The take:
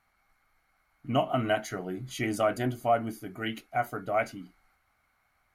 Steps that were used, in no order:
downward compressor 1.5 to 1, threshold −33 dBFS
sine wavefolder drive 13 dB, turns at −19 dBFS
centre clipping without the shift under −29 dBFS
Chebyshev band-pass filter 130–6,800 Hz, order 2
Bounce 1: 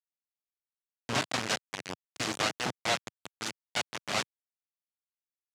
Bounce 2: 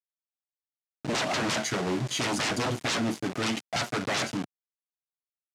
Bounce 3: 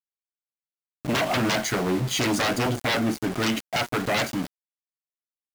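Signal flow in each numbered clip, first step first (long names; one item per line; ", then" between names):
downward compressor, then centre clipping without the shift, then sine wavefolder, then Chebyshev band-pass filter
sine wavefolder, then downward compressor, then centre clipping without the shift, then Chebyshev band-pass filter
downward compressor, then sine wavefolder, then Chebyshev band-pass filter, then centre clipping without the shift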